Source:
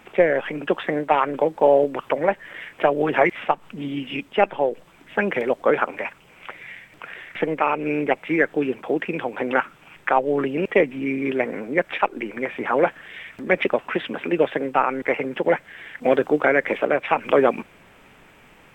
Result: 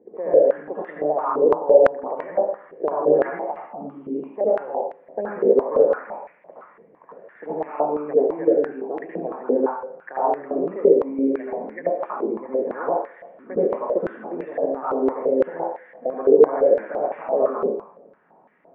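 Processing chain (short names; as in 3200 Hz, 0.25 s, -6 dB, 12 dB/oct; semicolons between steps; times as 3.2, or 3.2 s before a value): tilt shelf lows +7.5 dB, about 870 Hz; limiter -7.5 dBFS, peak gain reduction 6.5 dB; air absorption 430 m; reverb RT60 0.75 s, pre-delay 70 ms, DRR -6.5 dB; stepped band-pass 5.9 Hz 440–1900 Hz; gain -10.5 dB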